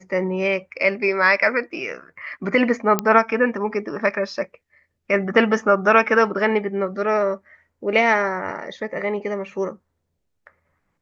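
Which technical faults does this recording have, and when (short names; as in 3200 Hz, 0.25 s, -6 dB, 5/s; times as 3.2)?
2.99 pop -5 dBFS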